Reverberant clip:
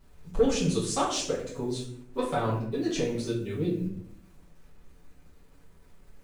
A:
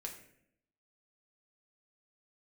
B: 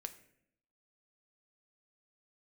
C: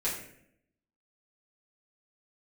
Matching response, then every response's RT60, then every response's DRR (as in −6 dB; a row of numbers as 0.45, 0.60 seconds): C; 0.70, 0.70, 0.70 seconds; 0.0, 7.5, −9.5 decibels